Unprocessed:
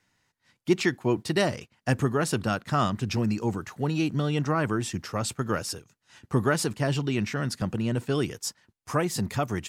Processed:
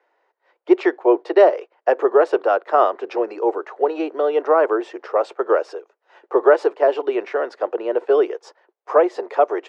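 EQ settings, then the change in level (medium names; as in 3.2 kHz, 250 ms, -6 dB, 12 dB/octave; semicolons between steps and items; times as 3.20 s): steep high-pass 370 Hz 48 dB/octave; tape spacing loss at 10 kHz 36 dB; peaking EQ 570 Hz +13 dB 2.3 oct; +5.0 dB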